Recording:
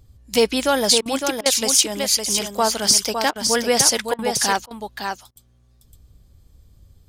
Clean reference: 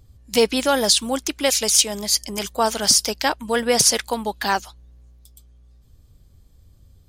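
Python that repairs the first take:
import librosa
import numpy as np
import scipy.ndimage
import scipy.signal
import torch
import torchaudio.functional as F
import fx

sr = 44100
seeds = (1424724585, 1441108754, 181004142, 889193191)

y = fx.fix_interpolate(x, sr, at_s=(1.01, 1.41, 3.31, 4.14, 4.66, 5.31), length_ms=46.0)
y = fx.fix_echo_inverse(y, sr, delay_ms=559, level_db=-6.0)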